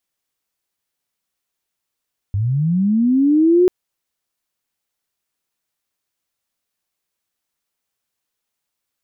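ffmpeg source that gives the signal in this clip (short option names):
-f lavfi -i "aevalsrc='pow(10,(-16+7.5*t/1.34)/20)*sin(2*PI*(94*t+276*t*t/(2*1.34)))':d=1.34:s=44100"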